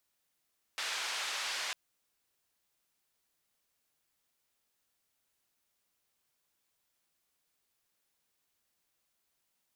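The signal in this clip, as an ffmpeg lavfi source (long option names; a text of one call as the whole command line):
ffmpeg -f lavfi -i "anoisesrc=color=white:duration=0.95:sample_rate=44100:seed=1,highpass=frequency=890,lowpass=frequency=4600,volume=-24.7dB" out.wav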